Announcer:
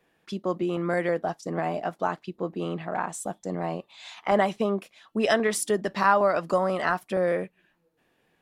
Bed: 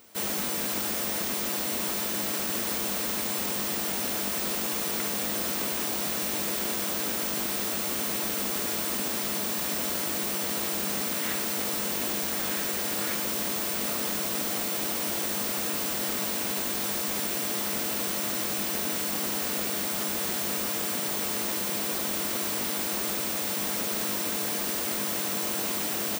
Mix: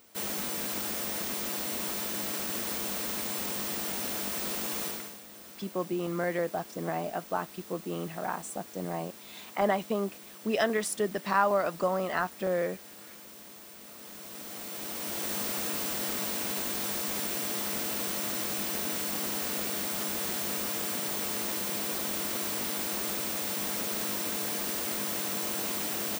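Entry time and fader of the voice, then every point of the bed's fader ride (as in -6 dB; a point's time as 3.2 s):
5.30 s, -4.5 dB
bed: 4.86 s -4 dB
5.22 s -19 dB
13.86 s -19 dB
15.33 s -3 dB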